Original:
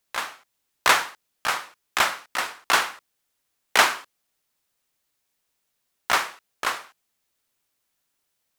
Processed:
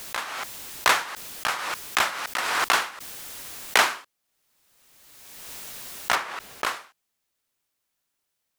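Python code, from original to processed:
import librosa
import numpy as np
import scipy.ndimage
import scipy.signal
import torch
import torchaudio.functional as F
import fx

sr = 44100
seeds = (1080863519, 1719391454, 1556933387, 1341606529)

y = fx.high_shelf(x, sr, hz=3700.0, db=-9.0, at=(6.15, 6.64))
y = fx.pre_swell(y, sr, db_per_s=30.0)
y = F.gain(torch.from_numpy(y), -3.0).numpy()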